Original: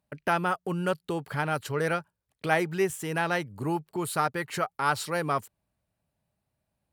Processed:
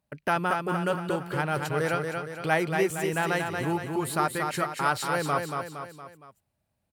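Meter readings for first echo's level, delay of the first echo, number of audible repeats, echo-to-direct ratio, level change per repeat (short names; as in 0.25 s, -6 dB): -5.0 dB, 0.232 s, 4, -4.0 dB, -6.0 dB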